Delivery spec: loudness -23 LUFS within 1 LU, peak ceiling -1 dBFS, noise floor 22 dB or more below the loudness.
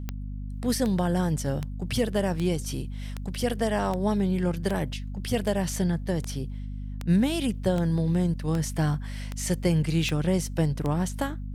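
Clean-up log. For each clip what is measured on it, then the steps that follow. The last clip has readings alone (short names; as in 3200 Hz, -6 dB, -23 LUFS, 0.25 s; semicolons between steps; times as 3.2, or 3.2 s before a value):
clicks 15; hum 50 Hz; harmonics up to 250 Hz; hum level -32 dBFS; loudness -27.5 LUFS; peak -12.5 dBFS; loudness target -23.0 LUFS
-> de-click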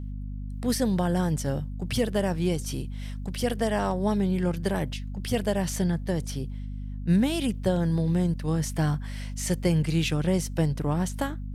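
clicks 0; hum 50 Hz; harmonics up to 250 Hz; hum level -32 dBFS
-> de-hum 50 Hz, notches 5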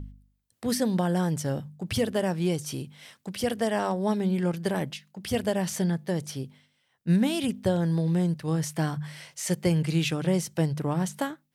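hum none; loudness -28.0 LUFS; peak -13.5 dBFS; loudness target -23.0 LUFS
-> gain +5 dB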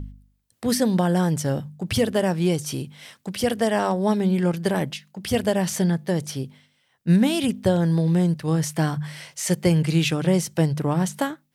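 loudness -23.0 LUFS; peak -8.5 dBFS; noise floor -67 dBFS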